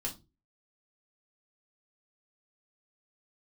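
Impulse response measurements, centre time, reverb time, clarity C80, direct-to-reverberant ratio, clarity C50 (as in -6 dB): 14 ms, 0.25 s, 22.0 dB, -2.5 dB, 14.0 dB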